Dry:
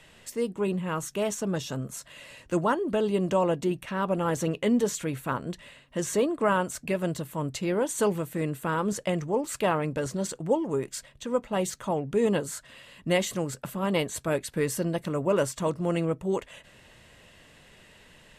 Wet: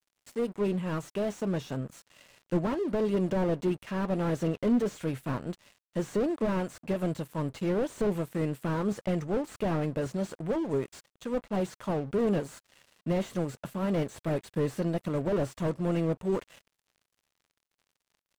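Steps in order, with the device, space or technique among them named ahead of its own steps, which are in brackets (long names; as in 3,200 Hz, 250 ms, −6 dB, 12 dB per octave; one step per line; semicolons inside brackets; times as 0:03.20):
0:01.53–0:02.78: high-shelf EQ 6,500 Hz −6 dB
early transistor amplifier (dead-zone distortion −46.5 dBFS; slew-rate limiting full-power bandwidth 25 Hz)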